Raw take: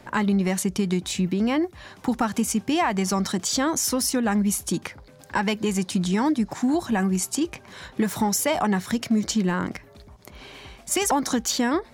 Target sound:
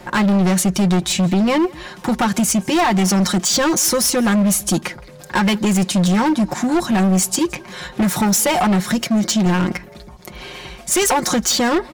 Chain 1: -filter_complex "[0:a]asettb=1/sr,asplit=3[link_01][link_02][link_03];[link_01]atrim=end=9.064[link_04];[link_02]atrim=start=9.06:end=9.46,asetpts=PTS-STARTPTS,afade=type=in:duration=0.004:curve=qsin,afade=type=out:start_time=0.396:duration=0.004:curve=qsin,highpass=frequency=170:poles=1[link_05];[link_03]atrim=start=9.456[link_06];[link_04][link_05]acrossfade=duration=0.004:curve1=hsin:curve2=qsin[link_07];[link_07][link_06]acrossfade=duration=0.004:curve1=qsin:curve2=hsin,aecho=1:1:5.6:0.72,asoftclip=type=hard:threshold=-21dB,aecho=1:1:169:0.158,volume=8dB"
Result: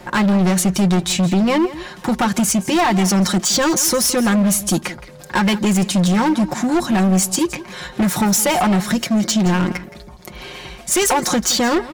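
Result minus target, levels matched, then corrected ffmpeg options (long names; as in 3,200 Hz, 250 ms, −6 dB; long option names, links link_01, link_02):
echo-to-direct +8 dB
-filter_complex "[0:a]asettb=1/sr,asplit=3[link_01][link_02][link_03];[link_01]atrim=end=9.064[link_04];[link_02]atrim=start=9.06:end=9.46,asetpts=PTS-STARTPTS,afade=type=in:duration=0.004:curve=qsin,afade=type=out:start_time=0.396:duration=0.004:curve=qsin,highpass=frequency=170:poles=1[link_05];[link_03]atrim=start=9.456[link_06];[link_04][link_05]acrossfade=duration=0.004:curve1=hsin:curve2=qsin[link_07];[link_07][link_06]acrossfade=duration=0.004:curve1=qsin:curve2=hsin,aecho=1:1:5.6:0.72,asoftclip=type=hard:threshold=-21dB,aecho=1:1:169:0.0631,volume=8dB"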